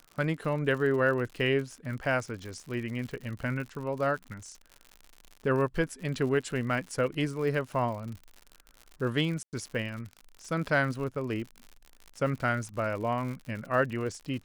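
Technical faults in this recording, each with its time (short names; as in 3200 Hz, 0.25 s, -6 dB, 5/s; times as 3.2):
crackle 91/s -37 dBFS
9.43–9.53 gap 98 ms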